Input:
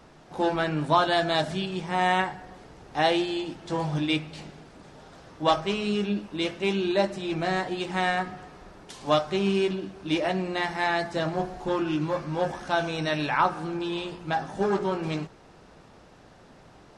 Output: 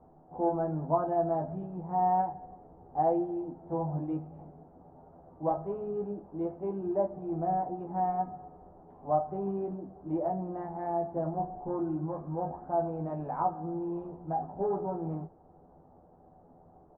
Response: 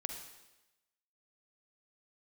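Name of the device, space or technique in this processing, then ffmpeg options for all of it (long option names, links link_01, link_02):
under water: -filter_complex "[0:a]lowpass=frequency=900:width=0.5412,lowpass=frequency=900:width=1.3066,equalizer=frequency=760:width_type=o:width=0.3:gain=7.5,asplit=2[link_01][link_02];[link_02]adelay=12,volume=-4dB[link_03];[link_01][link_03]amix=inputs=2:normalize=0,volume=-7.5dB"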